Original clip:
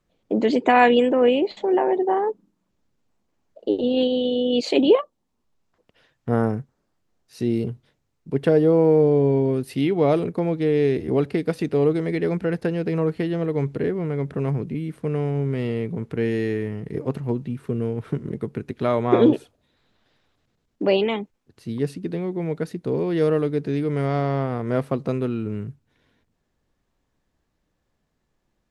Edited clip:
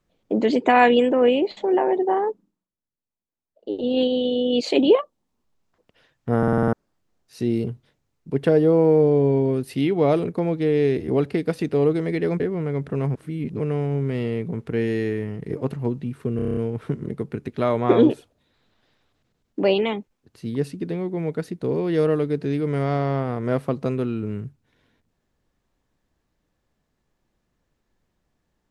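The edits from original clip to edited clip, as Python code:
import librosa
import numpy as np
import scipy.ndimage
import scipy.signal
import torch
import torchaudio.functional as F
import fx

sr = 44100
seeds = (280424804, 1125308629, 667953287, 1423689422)

y = fx.edit(x, sr, fx.fade_down_up(start_s=2.24, length_s=1.72, db=-21.5, fade_s=0.44),
    fx.stutter_over(start_s=6.38, slice_s=0.05, count=7),
    fx.cut(start_s=12.4, length_s=1.44),
    fx.reverse_span(start_s=14.59, length_s=0.45),
    fx.stutter(start_s=17.8, slice_s=0.03, count=8), tone=tone)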